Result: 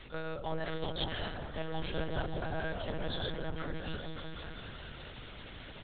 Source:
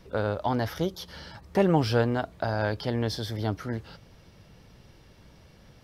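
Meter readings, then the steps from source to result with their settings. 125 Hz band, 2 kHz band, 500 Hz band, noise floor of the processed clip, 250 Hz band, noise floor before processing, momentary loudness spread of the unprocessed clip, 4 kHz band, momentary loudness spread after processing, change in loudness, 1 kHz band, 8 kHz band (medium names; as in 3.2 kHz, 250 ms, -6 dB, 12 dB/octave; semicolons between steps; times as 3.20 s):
-11.0 dB, -5.0 dB, -10.5 dB, -49 dBFS, -12.0 dB, -55 dBFS, 13 LU, -2.0 dB, 11 LU, -11.5 dB, -9.5 dB, under -30 dB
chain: reverse; compression 5:1, threshold -37 dBFS, peak gain reduction 17.5 dB; reverse; Chebyshev shaper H 2 -11 dB, 3 -17 dB, 4 -23 dB, 5 -28 dB, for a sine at -24.5 dBFS; tilt EQ +3 dB/octave; comb 3.8 ms, depth 43%; on a send: delay with an opening low-pass 191 ms, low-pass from 400 Hz, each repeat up 1 oct, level 0 dB; on the sum: hum 60 Hz, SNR 17 dB; monotone LPC vocoder at 8 kHz 160 Hz; bass shelf 120 Hz +4 dB; tape noise reduction on one side only encoder only; trim +5.5 dB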